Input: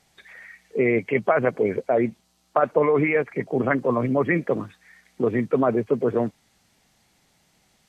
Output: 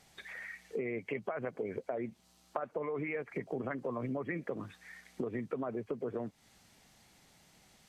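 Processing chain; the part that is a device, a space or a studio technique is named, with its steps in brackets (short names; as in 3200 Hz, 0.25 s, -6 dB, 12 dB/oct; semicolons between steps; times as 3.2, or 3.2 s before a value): serial compression, peaks first (compressor 10:1, threshold -28 dBFS, peak gain reduction 14 dB; compressor 1.5:1, threshold -43 dBFS, peak gain reduction 6.5 dB)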